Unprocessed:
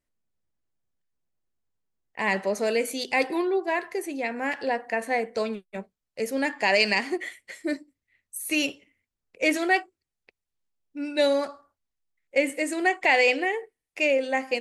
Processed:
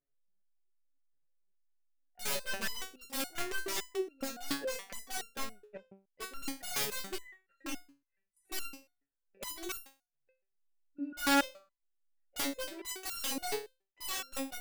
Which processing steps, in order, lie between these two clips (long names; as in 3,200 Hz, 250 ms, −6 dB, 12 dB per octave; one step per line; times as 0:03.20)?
adaptive Wiener filter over 41 samples
parametric band 1,500 Hz +13 dB 2.4 octaves
in parallel at +1.5 dB: downward compressor 12 to 1, threshold −24 dBFS, peak gain reduction 18.5 dB
on the sum: wrap-around overflow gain 13.5 dB
step-sequenced resonator 7.1 Hz 140–1,400 Hz
level −2 dB